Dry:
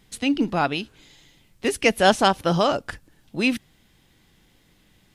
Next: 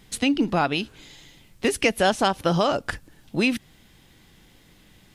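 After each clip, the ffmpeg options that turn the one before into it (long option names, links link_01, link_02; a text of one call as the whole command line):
ffmpeg -i in.wav -af "acompressor=threshold=-24dB:ratio=3,volume=5dB" out.wav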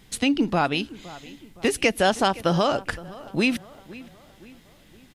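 ffmpeg -i in.wav -filter_complex "[0:a]asplit=2[link_01][link_02];[link_02]adelay=516,lowpass=frequency=2700:poles=1,volume=-18.5dB,asplit=2[link_03][link_04];[link_04]adelay=516,lowpass=frequency=2700:poles=1,volume=0.49,asplit=2[link_05][link_06];[link_06]adelay=516,lowpass=frequency=2700:poles=1,volume=0.49,asplit=2[link_07][link_08];[link_08]adelay=516,lowpass=frequency=2700:poles=1,volume=0.49[link_09];[link_01][link_03][link_05][link_07][link_09]amix=inputs=5:normalize=0" out.wav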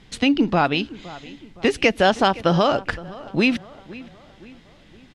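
ffmpeg -i in.wav -af "lowpass=4900,volume=3.5dB" out.wav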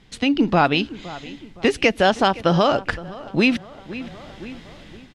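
ffmpeg -i in.wav -af "dynaudnorm=framelen=150:gausssize=5:maxgain=11.5dB,volume=-3dB" out.wav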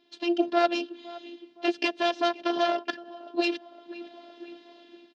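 ffmpeg -i in.wav -af "aeval=exprs='0.668*(cos(1*acos(clip(val(0)/0.668,-1,1)))-cos(1*PI/2))+0.237*(cos(4*acos(clip(val(0)/0.668,-1,1)))-cos(4*PI/2))':channel_layout=same,afftfilt=real='hypot(re,im)*cos(PI*b)':imag='0':win_size=512:overlap=0.75,highpass=frequency=220:width=0.5412,highpass=frequency=220:width=1.3066,equalizer=frequency=580:width_type=q:width=4:gain=3,equalizer=frequency=1200:width_type=q:width=4:gain=-9,equalizer=frequency=2100:width_type=q:width=4:gain=-10,lowpass=frequency=4800:width=0.5412,lowpass=frequency=4800:width=1.3066,volume=-3.5dB" out.wav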